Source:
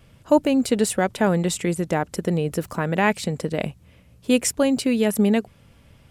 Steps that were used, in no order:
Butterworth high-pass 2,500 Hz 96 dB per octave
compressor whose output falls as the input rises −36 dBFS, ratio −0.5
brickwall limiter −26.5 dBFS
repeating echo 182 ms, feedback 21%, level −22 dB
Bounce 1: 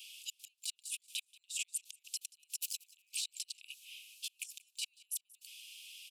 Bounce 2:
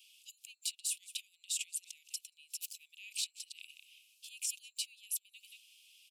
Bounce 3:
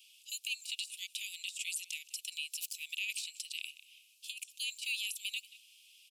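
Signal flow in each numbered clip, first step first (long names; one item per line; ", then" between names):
compressor whose output falls as the input rises, then Butterworth high-pass, then brickwall limiter, then repeating echo
repeating echo, then brickwall limiter, then compressor whose output falls as the input rises, then Butterworth high-pass
Butterworth high-pass, then compressor whose output falls as the input rises, then repeating echo, then brickwall limiter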